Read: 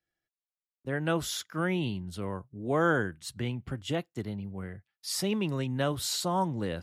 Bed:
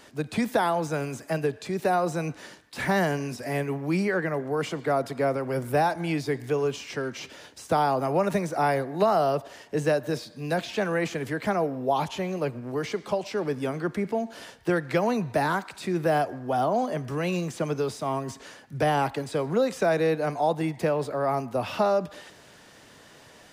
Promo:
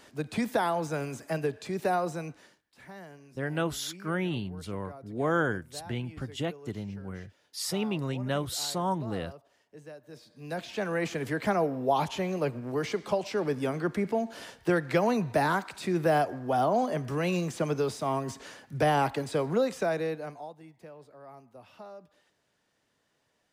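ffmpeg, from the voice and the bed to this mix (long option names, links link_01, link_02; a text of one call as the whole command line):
ffmpeg -i stem1.wav -i stem2.wav -filter_complex "[0:a]adelay=2500,volume=-1dB[link_01];[1:a]volume=18dB,afade=type=out:start_time=1.94:duration=0.68:silence=0.112202,afade=type=in:start_time=10.07:duration=1.26:silence=0.0841395,afade=type=out:start_time=19.39:duration=1.14:silence=0.0794328[link_02];[link_01][link_02]amix=inputs=2:normalize=0" out.wav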